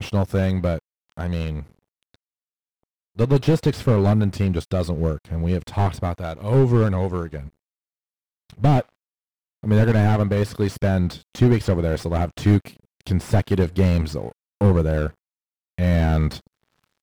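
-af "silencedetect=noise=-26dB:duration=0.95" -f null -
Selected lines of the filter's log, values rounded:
silence_start: 1.61
silence_end: 3.19 | silence_duration: 1.58
silence_start: 7.40
silence_end: 8.62 | silence_duration: 1.22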